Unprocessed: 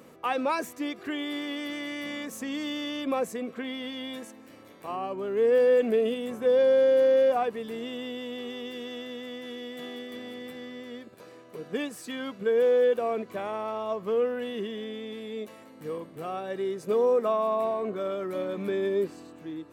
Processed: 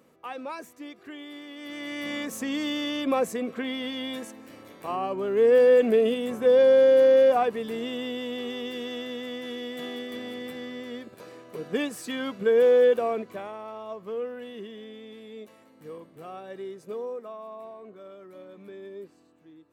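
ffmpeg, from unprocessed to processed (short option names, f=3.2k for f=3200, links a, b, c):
-af "volume=3.5dB,afade=t=in:st=1.55:d=0.61:silence=0.237137,afade=t=out:st=12.88:d=0.67:silence=0.316228,afade=t=out:st=16.59:d=0.68:silence=0.398107"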